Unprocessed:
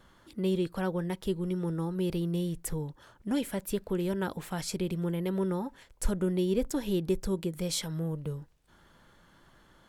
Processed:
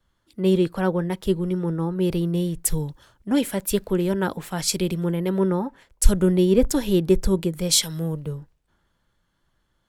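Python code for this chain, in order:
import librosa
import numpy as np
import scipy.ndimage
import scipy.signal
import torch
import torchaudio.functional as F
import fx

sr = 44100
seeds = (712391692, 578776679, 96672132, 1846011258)

y = fx.band_widen(x, sr, depth_pct=70)
y = y * 10.0 ** (8.5 / 20.0)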